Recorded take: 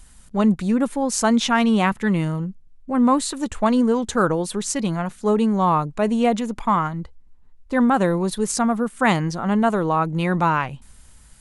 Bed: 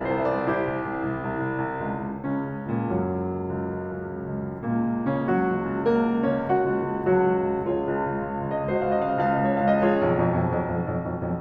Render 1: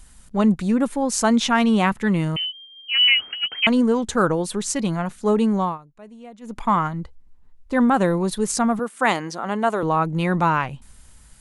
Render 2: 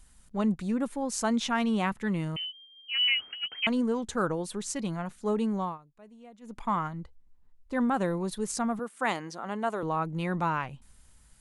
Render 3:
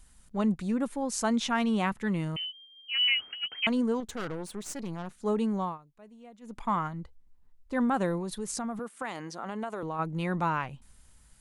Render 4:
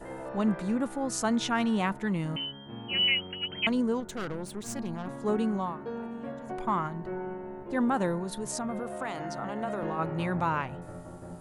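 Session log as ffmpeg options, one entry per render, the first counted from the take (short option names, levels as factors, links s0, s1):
-filter_complex "[0:a]asettb=1/sr,asplit=3[s0][s1][s2];[s0]atrim=end=2.364[s3];[s1]atrim=start=2.36:end=3.67,asetpts=PTS-STARTPTS,afade=t=in:d=0.004:c=qsin,afade=t=out:st=1.306:d=0.004:c=qsin,lowpass=f=2700:t=q:w=0.5098,lowpass=f=2700:t=q:w=0.6013,lowpass=f=2700:t=q:w=0.9,lowpass=f=2700:t=q:w=2.563,afreqshift=-3200[s4];[s2]atrim=start=3.666[s5];[s3][s4]acrossfade=d=0.004:c1=hsin:c2=qsin[s6];[s6][s5]acrossfade=d=0.004:c1=qsin:c2=hsin,asettb=1/sr,asplit=3[s7][s8][s9];[s7]atrim=end=8.794[s10];[s8]atrim=start=8.79:end=9.83,asetpts=PTS-STARTPTS,afade=t=in:d=0.004:c=qsin,afade=t=out:st=1.036:d=0.004:c=qsin,highpass=320[s11];[s9]atrim=start=9.826[s12];[s10][s11]acrossfade=d=0.004:c1=hsin:c2=qsin[s13];[s13][s12]acrossfade=d=0.004:c1=qsin:c2=hsin,asplit=3[s14][s15][s16];[s14]atrim=end=5.78,asetpts=PTS-STARTPTS,afade=t=out:st=5.56:d=0.22:silence=0.0749894[s17];[s15]atrim=start=5.78:end=6.4,asetpts=PTS-STARTPTS,volume=0.075[s18];[s16]atrim=start=6.4,asetpts=PTS-STARTPTS,afade=t=in:d=0.22:silence=0.0749894[s19];[s17][s18][s19]concat=n=3:v=0:a=1"
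-af "volume=0.335"
-filter_complex "[0:a]asettb=1/sr,asplit=3[s0][s1][s2];[s0]atrim=end=4.004[s3];[s1]atrim=start=4:end=5.2,asetpts=PTS-STARTPTS,afade=t=in:d=0.004:c=qsin,afade=t=out:st=1.196:d=0.004:c=qsin,aeval=exprs='(tanh(39.8*val(0)+0.7)-tanh(0.7))/39.8':c=same[s4];[s2]atrim=start=5.196[s5];[s3][s4]acrossfade=d=0.004:c1=hsin:c2=qsin[s6];[s6][s5]acrossfade=d=0.004:c1=qsin:c2=hsin,asplit=3[s7][s8][s9];[s7]afade=t=out:st=8.19:d=0.02[s10];[s8]acompressor=threshold=0.0316:ratio=6:attack=3.2:release=140:knee=1:detection=peak,afade=t=in:st=8.19:d=0.02,afade=t=out:st=9.98:d=0.02[s11];[s9]afade=t=in:st=9.98:d=0.02[s12];[s10][s11][s12]amix=inputs=3:normalize=0"
-filter_complex "[1:a]volume=0.168[s0];[0:a][s0]amix=inputs=2:normalize=0"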